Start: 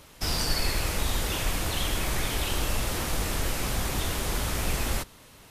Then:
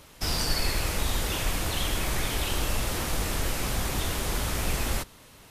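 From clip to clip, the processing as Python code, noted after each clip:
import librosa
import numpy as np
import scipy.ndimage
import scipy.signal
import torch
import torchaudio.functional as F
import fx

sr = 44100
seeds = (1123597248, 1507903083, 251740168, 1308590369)

y = x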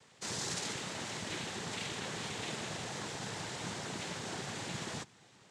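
y = fx.noise_vocoder(x, sr, seeds[0], bands=6)
y = F.gain(torch.from_numpy(y), -8.0).numpy()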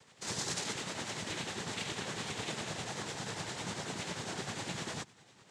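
y = x * (1.0 - 0.48 / 2.0 + 0.48 / 2.0 * np.cos(2.0 * np.pi * 10.0 * (np.arange(len(x)) / sr)))
y = F.gain(torch.from_numpy(y), 3.0).numpy()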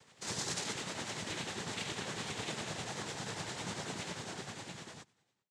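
y = fx.fade_out_tail(x, sr, length_s=1.61)
y = F.gain(torch.from_numpy(y), -1.0).numpy()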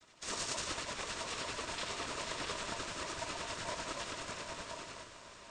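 y = fx.noise_vocoder(x, sr, seeds[1], bands=16)
y = fx.echo_diffused(y, sr, ms=905, feedback_pct=51, wet_db=-11.5)
y = y * np.sin(2.0 * np.pi * 800.0 * np.arange(len(y)) / sr)
y = F.gain(torch.from_numpy(y), 3.5).numpy()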